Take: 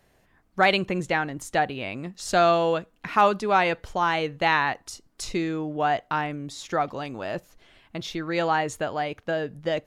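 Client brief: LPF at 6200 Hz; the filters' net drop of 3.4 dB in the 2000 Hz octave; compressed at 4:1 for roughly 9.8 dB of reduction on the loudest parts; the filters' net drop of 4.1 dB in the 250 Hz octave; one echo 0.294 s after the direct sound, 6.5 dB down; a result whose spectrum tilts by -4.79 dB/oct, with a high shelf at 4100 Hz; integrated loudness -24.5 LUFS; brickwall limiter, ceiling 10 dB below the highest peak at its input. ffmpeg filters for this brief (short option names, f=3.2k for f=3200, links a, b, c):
-af "lowpass=6.2k,equalizer=f=250:t=o:g=-6.5,equalizer=f=2k:t=o:g=-3.5,highshelf=f=4.1k:g=-3.5,acompressor=threshold=-28dB:ratio=4,alimiter=level_in=1.5dB:limit=-24dB:level=0:latency=1,volume=-1.5dB,aecho=1:1:294:0.473,volume=11dB"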